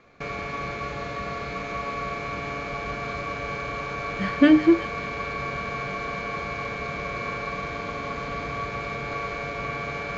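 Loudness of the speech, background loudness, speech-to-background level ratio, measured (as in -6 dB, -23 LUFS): -19.0 LUFS, -30.5 LUFS, 11.5 dB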